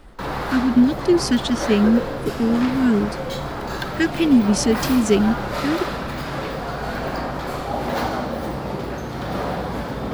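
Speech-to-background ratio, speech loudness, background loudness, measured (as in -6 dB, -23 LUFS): 7.0 dB, -19.5 LUFS, -26.5 LUFS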